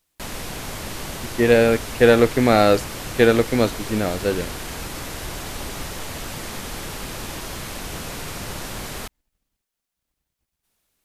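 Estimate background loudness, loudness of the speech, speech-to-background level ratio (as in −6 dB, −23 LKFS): −31.5 LKFS, −18.0 LKFS, 13.5 dB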